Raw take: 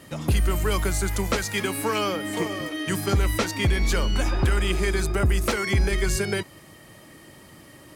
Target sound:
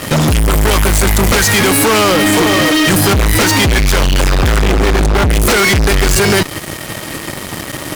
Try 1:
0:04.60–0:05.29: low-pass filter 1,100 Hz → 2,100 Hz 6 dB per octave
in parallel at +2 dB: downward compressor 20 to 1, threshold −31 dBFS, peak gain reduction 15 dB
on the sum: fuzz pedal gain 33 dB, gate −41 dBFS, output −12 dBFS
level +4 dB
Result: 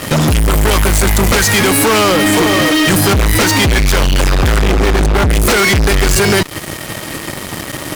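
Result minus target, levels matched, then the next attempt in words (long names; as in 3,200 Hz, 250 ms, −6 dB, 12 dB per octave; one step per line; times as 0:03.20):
downward compressor: peak gain reduction +6 dB
0:04.60–0:05.29: low-pass filter 1,100 Hz → 2,100 Hz 6 dB per octave
in parallel at +2 dB: downward compressor 20 to 1, threshold −24.5 dBFS, peak gain reduction 9 dB
on the sum: fuzz pedal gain 33 dB, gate −41 dBFS, output −12 dBFS
level +4 dB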